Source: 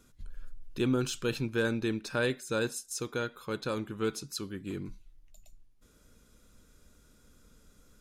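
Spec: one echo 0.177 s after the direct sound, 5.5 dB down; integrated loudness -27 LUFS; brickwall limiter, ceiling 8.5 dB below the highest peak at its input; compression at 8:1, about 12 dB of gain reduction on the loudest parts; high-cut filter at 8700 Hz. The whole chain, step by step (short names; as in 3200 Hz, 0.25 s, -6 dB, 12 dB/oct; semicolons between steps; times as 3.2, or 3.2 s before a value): LPF 8700 Hz; compressor 8:1, threshold -37 dBFS; limiter -33.5 dBFS; echo 0.177 s -5.5 dB; gain +16.5 dB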